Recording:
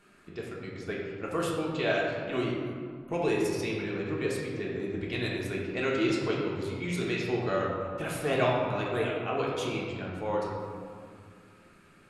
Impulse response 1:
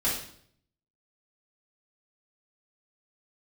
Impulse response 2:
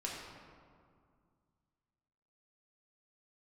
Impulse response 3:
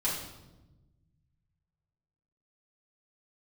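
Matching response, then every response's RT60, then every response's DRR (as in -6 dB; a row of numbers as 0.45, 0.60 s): 2; 0.60, 2.1, 1.1 s; -9.0, -4.0, -8.0 dB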